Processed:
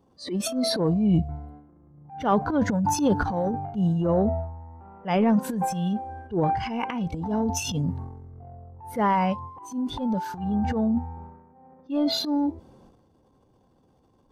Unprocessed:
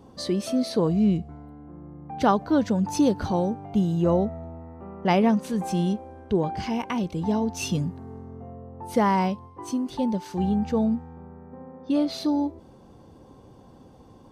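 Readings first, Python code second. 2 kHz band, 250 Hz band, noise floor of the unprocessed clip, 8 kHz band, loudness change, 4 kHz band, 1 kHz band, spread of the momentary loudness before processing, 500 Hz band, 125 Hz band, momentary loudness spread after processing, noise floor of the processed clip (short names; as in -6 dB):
+1.0 dB, -1.0 dB, -51 dBFS, +3.5 dB, -0.5 dB, +3.5 dB, +1.0 dB, 20 LU, -1.5 dB, +0.5 dB, 17 LU, -63 dBFS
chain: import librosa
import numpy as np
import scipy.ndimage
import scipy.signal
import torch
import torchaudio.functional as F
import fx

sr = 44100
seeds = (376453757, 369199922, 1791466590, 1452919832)

y = fx.noise_reduce_blind(x, sr, reduce_db=13)
y = fx.transient(y, sr, attack_db=-10, sustain_db=11)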